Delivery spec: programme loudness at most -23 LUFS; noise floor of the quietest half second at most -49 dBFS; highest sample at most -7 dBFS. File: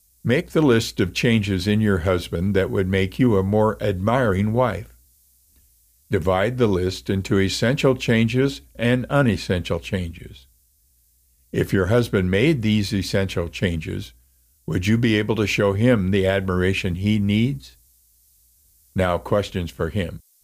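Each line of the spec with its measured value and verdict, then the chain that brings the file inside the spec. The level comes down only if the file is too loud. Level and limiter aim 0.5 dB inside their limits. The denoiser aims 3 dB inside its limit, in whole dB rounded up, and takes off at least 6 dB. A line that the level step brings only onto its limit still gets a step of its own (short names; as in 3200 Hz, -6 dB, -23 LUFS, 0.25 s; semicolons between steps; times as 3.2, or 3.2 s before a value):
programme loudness -21.0 LUFS: fail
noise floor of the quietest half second -61 dBFS: OK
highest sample -6.5 dBFS: fail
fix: gain -2.5 dB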